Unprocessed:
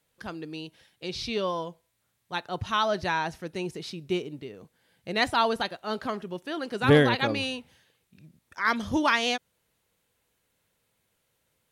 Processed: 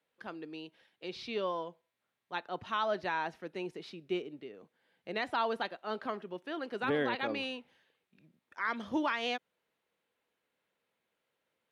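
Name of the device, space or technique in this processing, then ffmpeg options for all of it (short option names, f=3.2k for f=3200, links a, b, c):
DJ mixer with the lows and highs turned down: -filter_complex "[0:a]acrossover=split=200 3700:gain=0.112 1 0.2[a][b][c];[a][b][c]amix=inputs=3:normalize=0,alimiter=limit=-16.5dB:level=0:latency=1:release=108,asettb=1/sr,asplit=3[d][e][f];[d]atrim=end=3.954[g];[e]atrim=start=3.95:end=4.57,asetpts=PTS-STARTPTS,afade=t=in:d=0.004:c=qsin,afade=t=out:st=0.616:d=0.004:c=qsin,bandreject=f=960:w=6.4[h];[f]atrim=start=4.566[i];[g][h]acrossfade=d=0.004:c1=hsin:c2=qsin[j];[j][i]acrossfade=d=0.004:c1=qsin:c2=hsin,volume=-5dB"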